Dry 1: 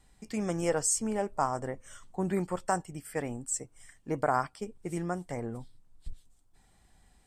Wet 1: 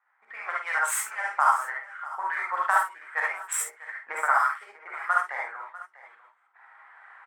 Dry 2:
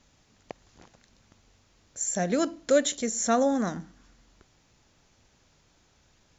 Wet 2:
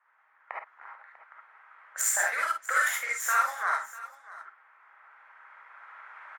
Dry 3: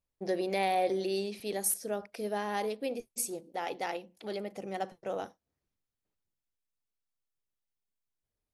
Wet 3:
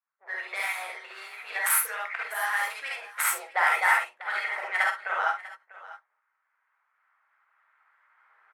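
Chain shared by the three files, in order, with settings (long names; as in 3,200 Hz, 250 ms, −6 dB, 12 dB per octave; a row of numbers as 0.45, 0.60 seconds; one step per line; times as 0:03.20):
running median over 9 samples
camcorder AGC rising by 7.2 dB per second
high-pass filter 1,200 Hz 24 dB per octave
low-pass that shuts in the quiet parts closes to 1,600 Hz, open at −32.5 dBFS
high-shelf EQ 2,900 Hz −8 dB
harmonic and percussive parts rebalanced harmonic −16 dB
flat-topped bell 4,200 Hz −11 dB
multi-tap delay 49/645 ms −8.5/−17.5 dB
reverb whose tail is shaped and stops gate 90 ms rising, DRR −3.5 dB
loudness normalisation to −27 LKFS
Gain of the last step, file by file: +15.0, +13.5, +16.0 decibels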